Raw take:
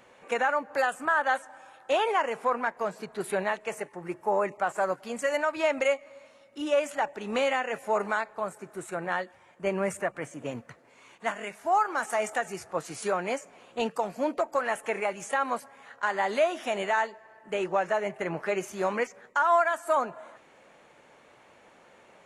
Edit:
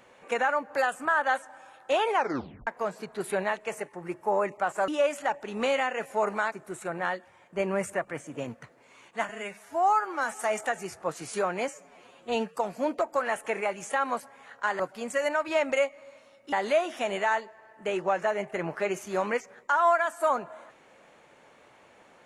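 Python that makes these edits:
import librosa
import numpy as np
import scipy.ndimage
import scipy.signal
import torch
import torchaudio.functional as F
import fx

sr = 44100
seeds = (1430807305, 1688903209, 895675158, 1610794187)

y = fx.edit(x, sr, fx.tape_stop(start_s=2.15, length_s=0.52),
    fx.move(start_s=4.88, length_s=1.73, to_s=16.19),
    fx.cut(start_s=8.25, length_s=0.34),
    fx.stretch_span(start_s=11.36, length_s=0.76, factor=1.5),
    fx.stretch_span(start_s=13.37, length_s=0.59, factor=1.5), tone=tone)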